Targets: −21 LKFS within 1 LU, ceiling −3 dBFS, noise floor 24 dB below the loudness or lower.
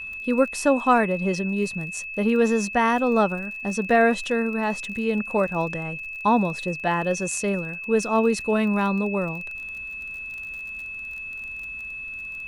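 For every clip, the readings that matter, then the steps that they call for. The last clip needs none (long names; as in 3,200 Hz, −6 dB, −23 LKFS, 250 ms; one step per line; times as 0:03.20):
crackle rate 34 per second; interfering tone 2,600 Hz; level of the tone −32 dBFS; integrated loudness −24.0 LKFS; sample peak −6.5 dBFS; target loudness −21.0 LKFS
→ click removal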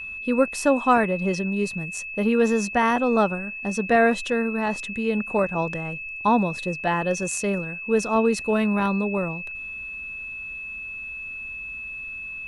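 crackle rate 0.16 per second; interfering tone 2,600 Hz; level of the tone −32 dBFS
→ notch filter 2,600 Hz, Q 30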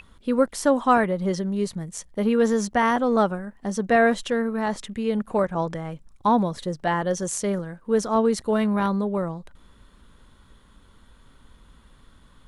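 interfering tone none found; integrated loudness −23.5 LKFS; sample peak −6.5 dBFS; target loudness −21.0 LKFS
→ level +2.5 dB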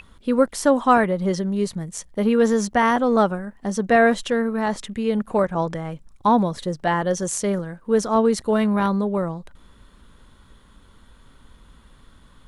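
integrated loudness −21.0 LKFS; sample peak −4.0 dBFS; background noise floor −52 dBFS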